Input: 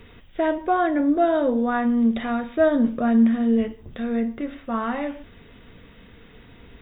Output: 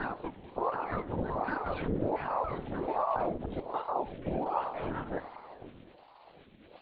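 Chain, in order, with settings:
slices reordered back to front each 144 ms, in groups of 4
downward expander −41 dBFS
brickwall limiter −19 dBFS, peak gain reduction 12 dB
flanger 0.45 Hz, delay 3 ms, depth 7.3 ms, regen −86%
surface crackle 330 per second −40 dBFS
auto-filter notch saw down 5.4 Hz 550–1,900 Hz
on a send at −10 dB: convolution reverb RT60 2.6 s, pre-delay 4 ms
on the sum: linear-prediction vocoder at 8 kHz whisper
ring modulator whose carrier an LFO sweeps 550 Hz, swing 65%, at 1.3 Hz

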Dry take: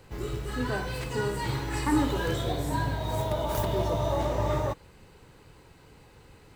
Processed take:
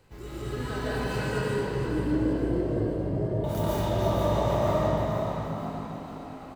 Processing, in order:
0:01.38–0:03.44: inverse Chebyshev low-pass filter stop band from 1,200 Hz, stop band 40 dB
echo with shifted repeats 474 ms, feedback 54%, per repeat +52 Hz, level −7.5 dB
convolution reverb RT60 3.1 s, pre-delay 94 ms, DRR −8.5 dB
level −7.5 dB

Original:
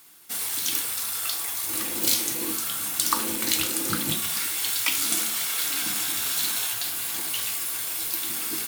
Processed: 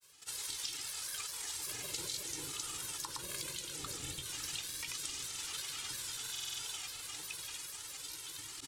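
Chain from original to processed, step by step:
sub-octave generator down 1 octave, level −2 dB
source passing by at 0:02.50, 7 m/s, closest 3.4 metres
low-pass filter 9,700 Hz 12 dB per octave
comb filter 2.1 ms, depth 91%
downward compressor 16 to 1, threshold −44 dBFS, peak gain reduction 24.5 dB
parametric band 6,700 Hz +7 dB 2.1 octaves
granular cloud, pitch spread up and down by 3 semitones
on a send: delay with a low-pass on its return 348 ms, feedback 76%, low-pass 440 Hz, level −8.5 dB
on the sum: buffer that repeats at 0:06.31, samples 2,048, times 5
level +3 dB

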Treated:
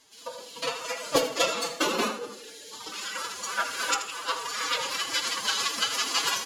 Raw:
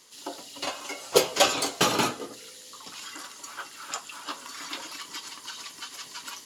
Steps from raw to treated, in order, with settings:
camcorder AGC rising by 7.6 dB per second
high-shelf EQ 5,700 Hz −6 dB
on a send: repeating echo 80 ms, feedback 33%, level −11.5 dB
on the sum: phase-vocoder pitch shift with formants kept +9.5 semitones
notch filter 730 Hz, Q 12
in parallel at −9 dB: asymmetric clip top −20 dBFS
on the sum: hum removal 82.41 Hz, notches 33
level −4 dB

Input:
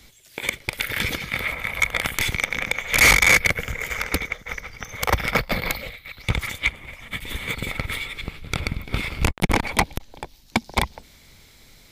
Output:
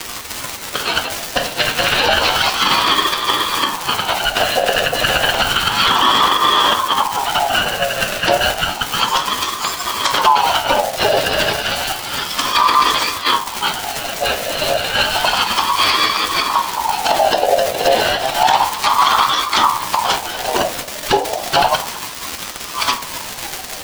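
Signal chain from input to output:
delay that plays each chunk backwards 397 ms, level −8 dB
meter weighting curve D
treble cut that deepens with the level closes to 1,400 Hz, closed at −9 dBFS
guitar amp tone stack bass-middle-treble 10-0-1
in parallel at −7.5 dB: decimation without filtering 30×
on the sum: rotating-speaker cabinet horn 0.6 Hz
surface crackle 290 per second −38 dBFS
time stretch by phase vocoder 2×
convolution reverb RT60 0.30 s, pre-delay 3 ms, DRR 5 dB
boost into a limiter +32.5 dB
ring modulator whose carrier an LFO sweeps 860 Hz, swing 30%, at 0.31 Hz

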